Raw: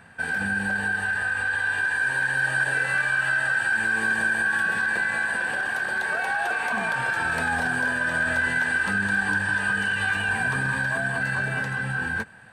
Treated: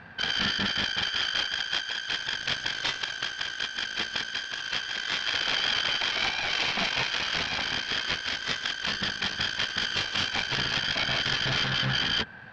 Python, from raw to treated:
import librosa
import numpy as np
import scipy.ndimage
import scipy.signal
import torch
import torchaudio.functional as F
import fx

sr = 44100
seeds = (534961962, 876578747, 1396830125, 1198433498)

y = fx.self_delay(x, sr, depth_ms=0.58)
y = scipy.signal.sosfilt(scipy.signal.butter(6, 5400.0, 'lowpass', fs=sr, output='sos'), y)
y = fx.over_compress(y, sr, threshold_db=-29.0, ratio=-0.5)